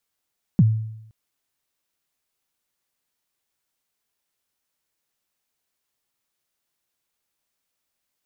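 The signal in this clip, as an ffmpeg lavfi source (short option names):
-f lavfi -i "aevalsrc='0.355*pow(10,-3*t/0.81)*sin(2*PI*(220*0.038/log(110/220)*(exp(log(110/220)*min(t,0.038)/0.038)-1)+110*max(t-0.038,0)))':d=0.52:s=44100"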